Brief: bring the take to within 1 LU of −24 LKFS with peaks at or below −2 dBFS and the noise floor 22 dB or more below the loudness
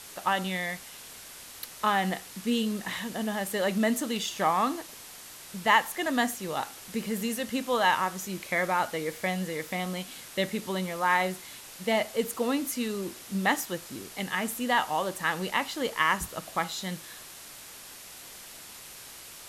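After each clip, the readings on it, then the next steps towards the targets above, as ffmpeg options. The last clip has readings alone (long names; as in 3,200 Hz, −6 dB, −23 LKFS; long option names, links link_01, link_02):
background noise floor −46 dBFS; target noise floor −51 dBFS; integrated loudness −29.0 LKFS; sample peak −8.5 dBFS; target loudness −24.0 LKFS
→ -af "afftdn=noise_reduction=6:noise_floor=-46"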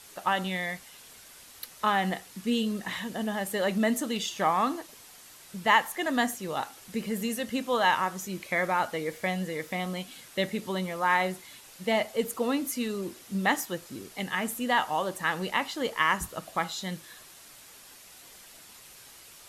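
background noise floor −51 dBFS; target noise floor −52 dBFS
→ -af "afftdn=noise_reduction=6:noise_floor=-51"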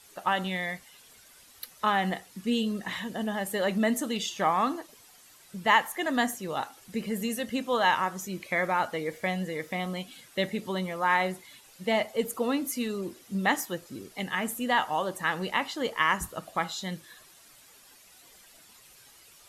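background noise floor −56 dBFS; integrated loudness −29.5 LKFS; sample peak −8.5 dBFS; target loudness −24.0 LKFS
→ -af "volume=5.5dB"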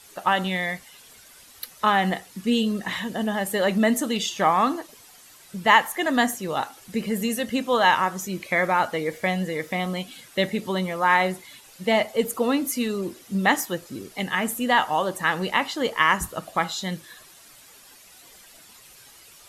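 integrated loudness −24.0 LKFS; sample peak −3.0 dBFS; background noise floor −50 dBFS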